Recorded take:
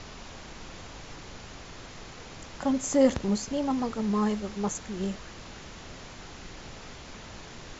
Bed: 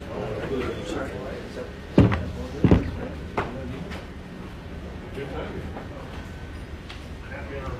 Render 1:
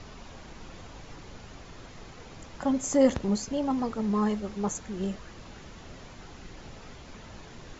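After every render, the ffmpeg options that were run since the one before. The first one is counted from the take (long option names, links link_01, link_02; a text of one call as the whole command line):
ffmpeg -i in.wav -af "afftdn=noise_reduction=6:noise_floor=-45" out.wav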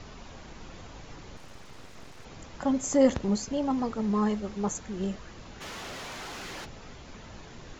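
ffmpeg -i in.wav -filter_complex "[0:a]asettb=1/sr,asplit=3[link_01][link_02][link_03];[link_01]atrim=end=1.364[link_04];[link_02]atrim=start=1.36:end=2.25,asetpts=PTS-STARTPTS,afade=type=in:duration=0.004:curve=qsin,afade=type=out:start_time=0.886:duration=0.004:curve=qsin,aeval=exprs='abs(val(0))':channel_layout=same[link_05];[link_03]atrim=start=2.246[link_06];[link_04][link_05]acrossfade=duration=0.004:curve1=hsin:curve2=qsin[link_07];[link_07][link_06]acrossfade=duration=0.004:curve1=qsin:curve2=hsin,asplit=3[link_08][link_09][link_10];[link_08]afade=type=out:start_time=5.6:duration=0.02[link_11];[link_09]asplit=2[link_12][link_13];[link_13]highpass=frequency=720:poles=1,volume=27dB,asoftclip=type=tanh:threshold=-33dB[link_14];[link_12][link_14]amix=inputs=2:normalize=0,lowpass=frequency=6600:poles=1,volume=-6dB,afade=type=in:start_time=5.6:duration=0.02,afade=type=out:start_time=6.64:duration=0.02[link_15];[link_10]afade=type=in:start_time=6.64:duration=0.02[link_16];[link_11][link_15][link_16]amix=inputs=3:normalize=0" out.wav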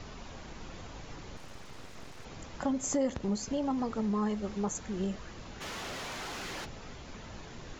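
ffmpeg -i in.wav -af "acompressor=threshold=-29dB:ratio=3" out.wav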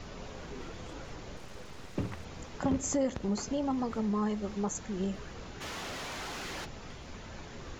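ffmpeg -i in.wav -i bed.wav -filter_complex "[1:a]volume=-18.5dB[link_01];[0:a][link_01]amix=inputs=2:normalize=0" out.wav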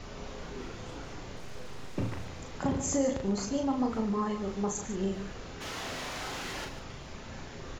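ffmpeg -i in.wav -filter_complex "[0:a]asplit=2[link_01][link_02];[link_02]adelay=36,volume=-5dB[link_03];[link_01][link_03]amix=inputs=2:normalize=0,aecho=1:1:43.73|145.8:0.282|0.282" out.wav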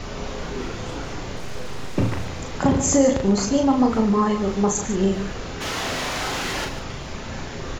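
ffmpeg -i in.wav -af "volume=11.5dB" out.wav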